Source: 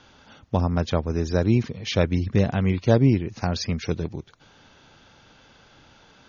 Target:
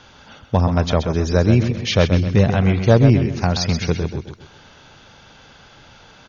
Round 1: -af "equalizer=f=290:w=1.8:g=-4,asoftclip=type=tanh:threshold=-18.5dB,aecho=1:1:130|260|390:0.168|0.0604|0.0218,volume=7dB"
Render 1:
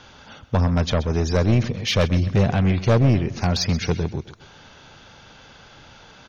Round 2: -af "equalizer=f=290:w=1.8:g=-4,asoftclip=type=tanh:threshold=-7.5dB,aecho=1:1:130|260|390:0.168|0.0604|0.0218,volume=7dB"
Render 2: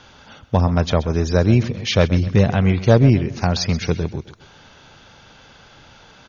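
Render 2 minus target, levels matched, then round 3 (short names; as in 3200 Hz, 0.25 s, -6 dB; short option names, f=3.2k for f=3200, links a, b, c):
echo-to-direct -7 dB
-af "equalizer=f=290:w=1.8:g=-4,asoftclip=type=tanh:threshold=-7.5dB,aecho=1:1:130|260|390|520:0.376|0.135|0.0487|0.0175,volume=7dB"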